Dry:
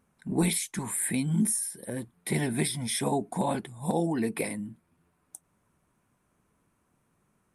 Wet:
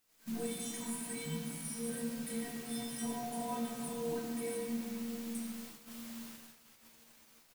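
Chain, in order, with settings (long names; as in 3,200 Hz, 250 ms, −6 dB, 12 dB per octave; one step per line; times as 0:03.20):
high-shelf EQ 7,500 Hz +8.5 dB
stiff-string resonator 230 Hz, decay 0.53 s, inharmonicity 0.008
compressor whose output falls as the input rises −46 dBFS, ratio −0.5
brickwall limiter −42.5 dBFS, peak gain reduction 10.5 dB
bit-depth reduction 10 bits, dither triangular
double-tracking delay 13 ms −8 dB
on a send: feedback echo with a low-pass in the loop 178 ms, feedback 79%, low-pass 2,100 Hz, level −18 dB
on the sum: rectangular room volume 200 cubic metres, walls hard, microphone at 0.61 metres
noise gate −54 dBFS, range −24 dB
level +6 dB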